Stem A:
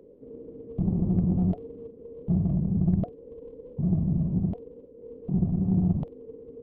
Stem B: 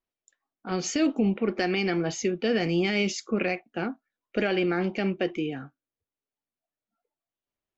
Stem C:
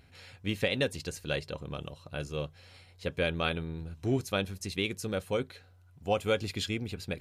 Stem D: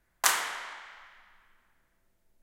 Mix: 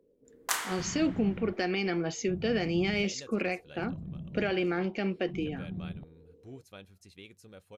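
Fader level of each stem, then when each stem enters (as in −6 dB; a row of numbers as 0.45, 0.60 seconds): −15.5, −4.0, −18.5, −6.0 decibels; 0.00, 0.00, 2.40, 0.25 seconds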